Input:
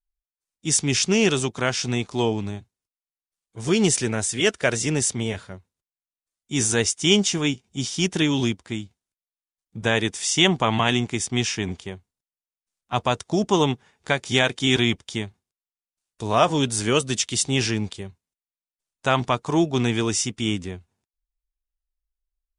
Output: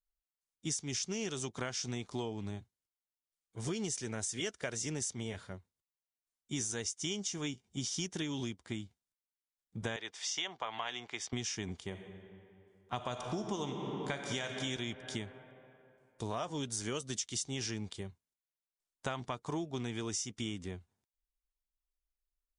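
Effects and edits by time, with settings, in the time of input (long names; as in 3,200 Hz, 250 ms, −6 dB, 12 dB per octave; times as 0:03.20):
0:09.96–0:11.33: three-way crossover with the lows and the highs turned down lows −20 dB, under 490 Hz, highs −21 dB, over 5,400 Hz
0:11.86–0:14.56: thrown reverb, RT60 2.7 s, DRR 4.5 dB
whole clip: notch filter 2,600 Hz, Q 15; dynamic equaliser 6,100 Hz, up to +7 dB, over −39 dBFS, Q 2.1; downward compressor 10 to 1, threshold −27 dBFS; level −7 dB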